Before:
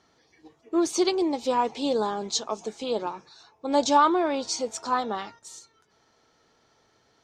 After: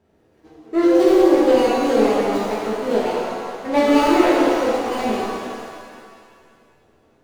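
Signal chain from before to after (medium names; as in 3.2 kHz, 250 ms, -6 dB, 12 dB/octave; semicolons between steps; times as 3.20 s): median filter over 41 samples; pitch-shifted reverb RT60 2.1 s, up +7 st, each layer -8 dB, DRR -7.5 dB; trim +3 dB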